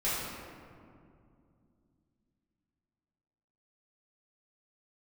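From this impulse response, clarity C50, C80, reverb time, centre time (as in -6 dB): -2.5 dB, 0.0 dB, 2.4 s, 0.129 s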